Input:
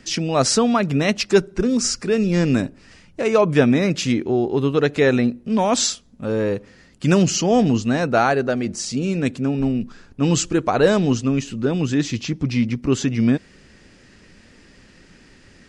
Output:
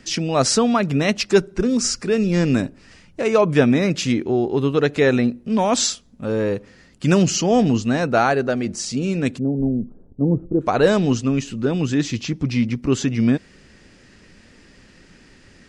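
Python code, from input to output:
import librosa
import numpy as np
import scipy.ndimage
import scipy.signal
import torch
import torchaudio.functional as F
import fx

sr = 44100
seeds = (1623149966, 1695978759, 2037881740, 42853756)

y = fx.cheby2_lowpass(x, sr, hz=3800.0, order=4, stop_db=80, at=(9.38, 10.6), fade=0.02)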